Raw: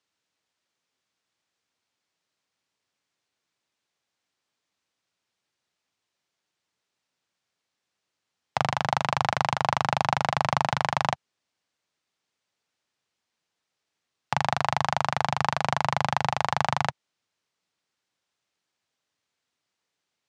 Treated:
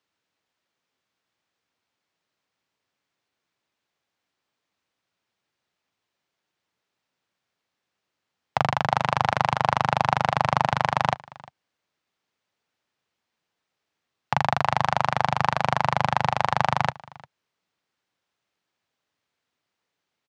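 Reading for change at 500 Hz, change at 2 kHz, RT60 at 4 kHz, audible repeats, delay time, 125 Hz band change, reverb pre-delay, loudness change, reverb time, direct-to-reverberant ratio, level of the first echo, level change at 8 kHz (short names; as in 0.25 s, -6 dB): +3.0 dB, +2.0 dB, none, 1, 0.351 s, +3.0 dB, none, +2.5 dB, none, none, -22.5 dB, -3.5 dB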